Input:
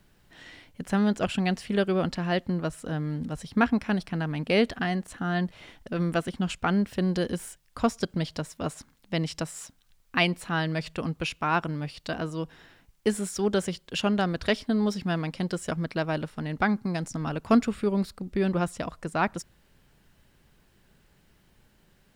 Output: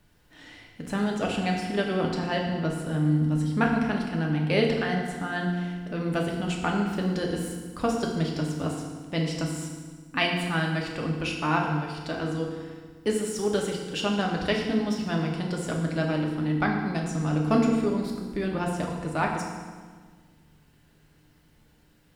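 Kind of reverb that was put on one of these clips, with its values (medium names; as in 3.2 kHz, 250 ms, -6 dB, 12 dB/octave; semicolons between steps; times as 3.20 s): FDN reverb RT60 1.5 s, low-frequency decay 1.4×, high-frequency decay 0.85×, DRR -0.5 dB; trim -2.5 dB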